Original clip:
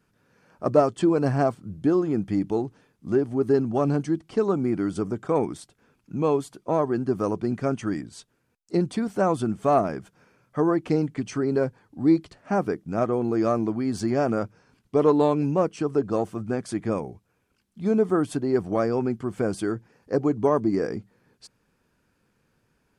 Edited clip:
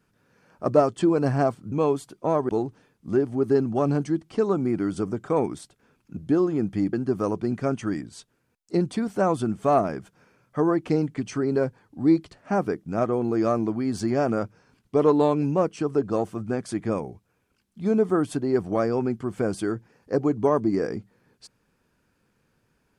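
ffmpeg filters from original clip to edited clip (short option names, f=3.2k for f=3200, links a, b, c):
-filter_complex "[0:a]asplit=5[a][b][c][d][e];[a]atrim=end=1.722[f];[b]atrim=start=6.158:end=6.932[g];[c]atrim=start=2.478:end=6.162[h];[d]atrim=start=1.718:end=2.482[i];[e]atrim=start=6.928[j];[f][g]acrossfade=d=0.004:c1=hsin:c2=hsin[k];[k][h]acrossfade=d=0.004:c1=hsin:c2=hsin[l];[l][i]acrossfade=d=0.004:c1=hsin:c2=hsin[m];[m][j]acrossfade=d=0.004:c1=hsin:c2=hsin"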